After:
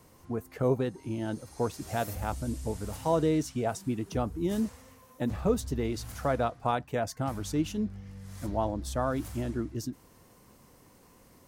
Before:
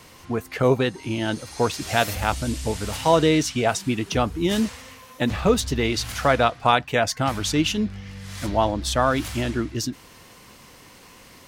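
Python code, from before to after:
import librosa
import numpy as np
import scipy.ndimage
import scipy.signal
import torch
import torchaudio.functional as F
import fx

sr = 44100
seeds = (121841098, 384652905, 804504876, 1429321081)

y = fx.peak_eq(x, sr, hz=3000.0, db=-13.0, octaves=2.4)
y = y * librosa.db_to_amplitude(-6.5)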